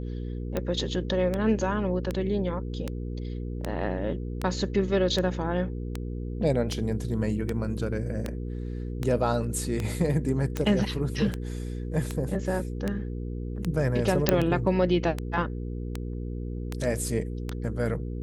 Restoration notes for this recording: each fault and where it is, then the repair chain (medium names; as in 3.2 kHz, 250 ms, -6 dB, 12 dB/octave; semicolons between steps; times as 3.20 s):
hum 60 Hz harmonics 8 -33 dBFS
tick 78 rpm -15 dBFS
14.29 s: pop -4 dBFS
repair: de-click; de-hum 60 Hz, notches 8